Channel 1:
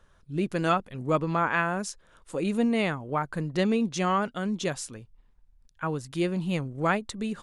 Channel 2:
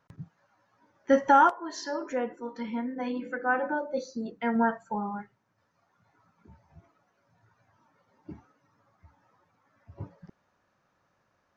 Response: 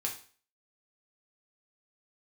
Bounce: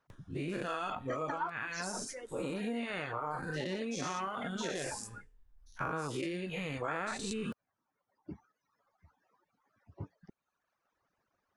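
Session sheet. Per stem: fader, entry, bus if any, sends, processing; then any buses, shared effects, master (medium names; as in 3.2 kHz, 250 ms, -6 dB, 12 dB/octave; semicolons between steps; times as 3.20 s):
-2.0 dB, 0.10 s, send -13.5 dB, every event in the spectrogram widened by 240 ms; auto duck -10 dB, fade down 0.30 s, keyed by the second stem
-1.0 dB, 0.00 s, no send, harmonic-percussive split harmonic -16 dB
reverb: on, RT60 0.40 s, pre-delay 4 ms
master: reverb removal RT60 1.1 s; compression 5:1, threshold -34 dBFS, peak gain reduction 14 dB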